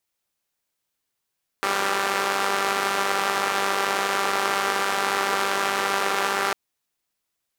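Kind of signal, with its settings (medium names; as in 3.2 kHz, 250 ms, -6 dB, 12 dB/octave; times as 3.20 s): four-cylinder engine model, steady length 4.90 s, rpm 5900, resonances 480/810/1200 Hz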